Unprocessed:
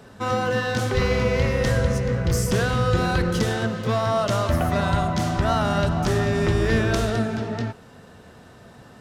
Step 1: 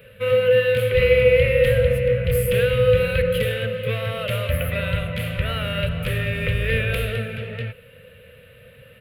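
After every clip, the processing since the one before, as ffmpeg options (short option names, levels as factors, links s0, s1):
-af "firequalizer=gain_entry='entry(130,0);entry(340,-24);entry(500,11);entry(750,-23);entry(1300,-6);entry(2500,12);entry(5800,-27);entry(11000,8)':delay=0.05:min_phase=1"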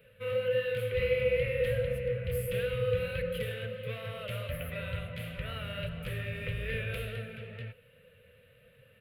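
-af "flanger=delay=4.2:depth=6.7:regen=-51:speed=1.5:shape=triangular,volume=0.355"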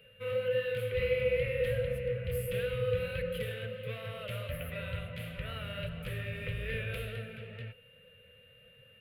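-af "aeval=exprs='val(0)+0.00126*sin(2*PI*2800*n/s)':c=same,volume=0.841"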